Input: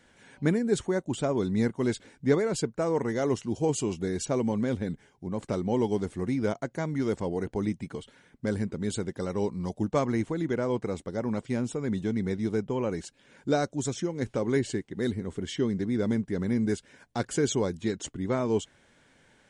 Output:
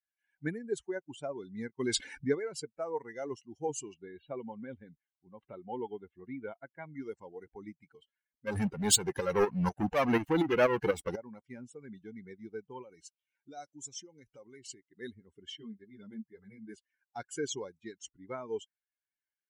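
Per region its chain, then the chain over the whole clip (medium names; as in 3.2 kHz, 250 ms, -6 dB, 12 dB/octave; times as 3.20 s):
1.79–2.31 s: gate -49 dBFS, range -14 dB + level flattener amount 70%
3.94–6.95 s: block-companded coder 7-bit + steep low-pass 4 kHz 96 dB/octave
8.47–11.16 s: waveshaping leveller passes 5 + tremolo saw up 4.1 Hz, depth 55%
12.82–14.87 s: treble shelf 3 kHz +5 dB + band-stop 1.7 kHz, Q 11 + compression, threshold -29 dBFS
15.57–16.74 s: band-stop 5.9 kHz, Q 5.9 + three-phase chorus
whole clip: expander on every frequency bin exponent 2; bass shelf 300 Hz -11.5 dB; trim +1 dB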